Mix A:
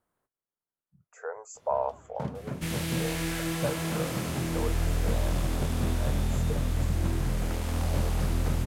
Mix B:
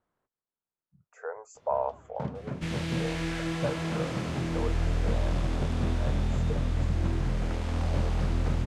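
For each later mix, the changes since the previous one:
master: add air absorption 93 m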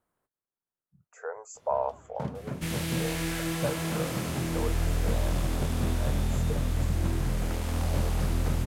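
master: remove air absorption 93 m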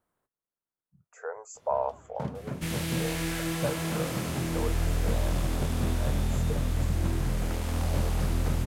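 none

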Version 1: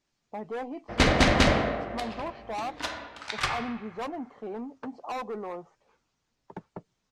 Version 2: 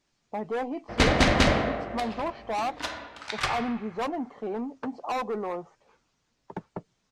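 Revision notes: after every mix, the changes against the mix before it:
speech +4.5 dB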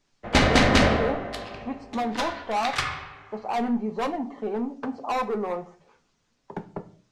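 background: entry -0.65 s; reverb: on, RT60 0.45 s

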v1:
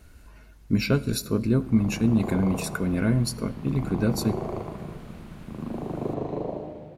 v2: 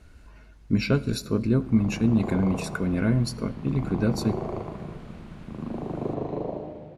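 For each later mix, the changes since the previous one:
master: add air absorption 50 m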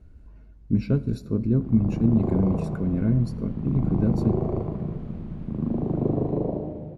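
speech -7.0 dB; master: add tilt shelf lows +9.5 dB, about 680 Hz

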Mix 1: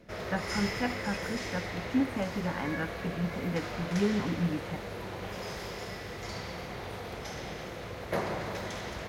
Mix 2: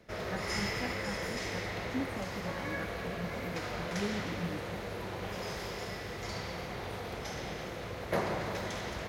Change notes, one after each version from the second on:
speech -8.5 dB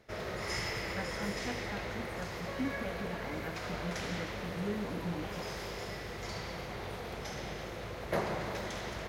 speech: entry +0.65 s; reverb: off

